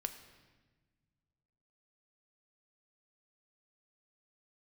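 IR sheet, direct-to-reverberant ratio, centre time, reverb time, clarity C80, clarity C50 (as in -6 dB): 7.5 dB, 15 ms, 1.3 s, 12.0 dB, 10.5 dB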